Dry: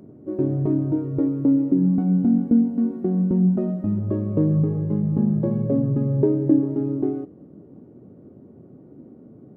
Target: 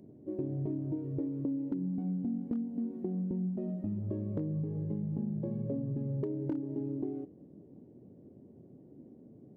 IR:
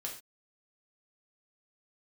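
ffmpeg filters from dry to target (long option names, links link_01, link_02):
-af "equalizer=frequency=1300:width_type=o:width=0.54:gain=-14,asoftclip=type=hard:threshold=-10dB,acompressor=threshold=-23dB:ratio=6,volume=-8.5dB"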